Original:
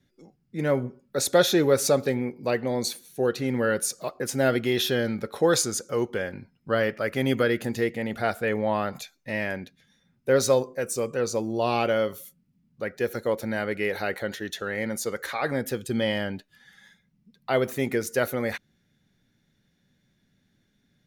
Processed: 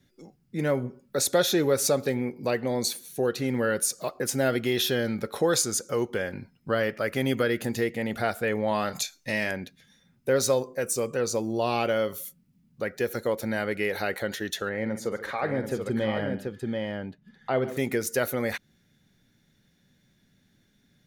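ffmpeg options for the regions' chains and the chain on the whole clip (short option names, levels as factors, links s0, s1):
-filter_complex "[0:a]asettb=1/sr,asplit=3[s0][s1][s2];[s0]atrim=end=8.684[s3];[s1]atrim=start=8.68:end=9.51,asetpts=PTS-STARTPTS,afade=t=in:d=0.004:c=qsin,afade=t=out:st=0.826:d=0.004:c=qsin,equalizer=f=6200:t=o:w=1.8:g=9.5,asplit=2[s4][s5];[s5]adelay=33,volume=0.237[s6];[s4][s6]amix=inputs=2:normalize=0,atrim=end_sample=36603[s7];[s2]atrim=start=9.506[s8];[s3][s7]acrossfade=d=0.004:c1=hsin:c2=qsin[s9];[s9][s8]acrossfade=d=0.004:c1=qsin:c2=hsin,asettb=1/sr,asplit=3[s10][s11][s12];[s10]atrim=end=14.694[s13];[s11]atrim=start=14.69:end=17.77,asetpts=PTS-STARTPTS,afade=t=in:d=0.004:c=qsin,afade=t=out:st=3.076:d=0.004:c=qsin,lowpass=f=1300:p=1,aecho=1:1:46|144|734:0.237|0.15|0.562,atrim=end_sample=135828[s14];[s12]atrim=start=17.766[s15];[s13][s14]acrossfade=d=0.004:c1=hsin:c2=qsin[s16];[s16][s15]acrossfade=d=0.004:c1=qsin:c2=hsin,highshelf=f=5700:g=4.5,acompressor=threshold=0.0224:ratio=1.5,volume=1.41"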